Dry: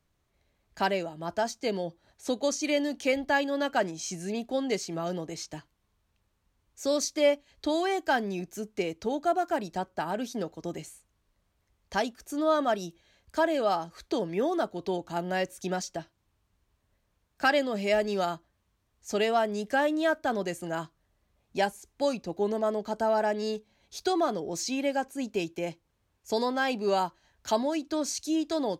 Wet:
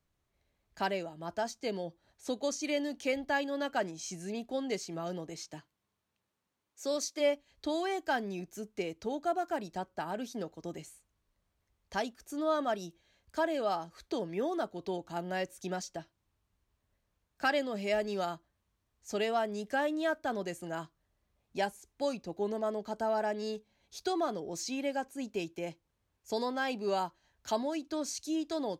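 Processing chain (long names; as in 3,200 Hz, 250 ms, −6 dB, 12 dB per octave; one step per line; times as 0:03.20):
0:05.36–0:07.19: high-pass filter 89 Hz → 310 Hz 12 dB per octave
level −5.5 dB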